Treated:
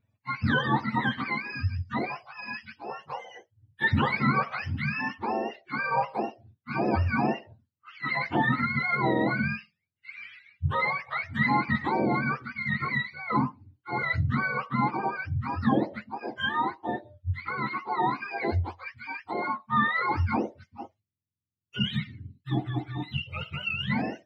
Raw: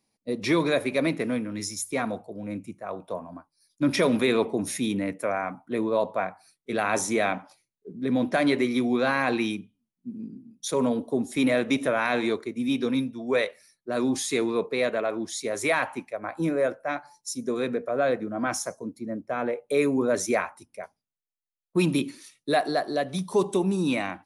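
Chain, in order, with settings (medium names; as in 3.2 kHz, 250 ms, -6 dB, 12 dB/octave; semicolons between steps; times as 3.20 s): spectrum inverted on a logarithmic axis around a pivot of 720 Hz; time-frequency box 20.99–23.90 s, 420–2000 Hz -13 dB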